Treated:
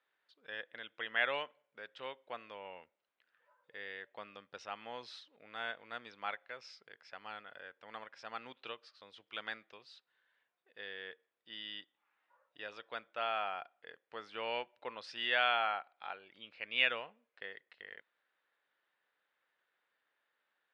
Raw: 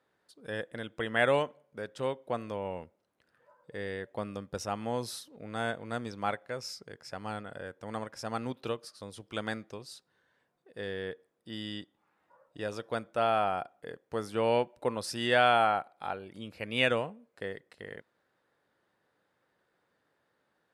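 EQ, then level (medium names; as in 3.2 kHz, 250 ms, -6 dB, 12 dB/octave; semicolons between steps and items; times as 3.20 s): low-pass 3.1 kHz 24 dB/octave; differentiator; +9.0 dB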